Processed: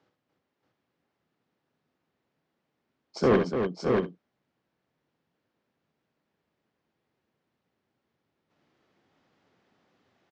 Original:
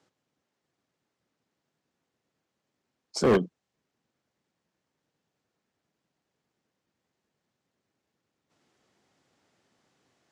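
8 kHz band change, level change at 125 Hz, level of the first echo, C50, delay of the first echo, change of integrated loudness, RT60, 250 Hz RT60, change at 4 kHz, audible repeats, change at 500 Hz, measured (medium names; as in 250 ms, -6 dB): no reading, +2.5 dB, -7.5 dB, no reverb, 63 ms, -1.0 dB, no reverb, no reverb, -3.0 dB, 4, +2.0 dB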